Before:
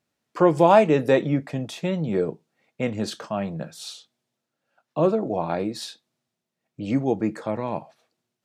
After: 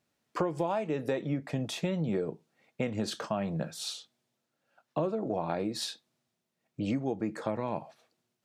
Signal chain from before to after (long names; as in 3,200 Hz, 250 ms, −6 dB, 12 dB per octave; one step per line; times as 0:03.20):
downward compressor 12 to 1, threshold −27 dBFS, peak gain reduction 17.5 dB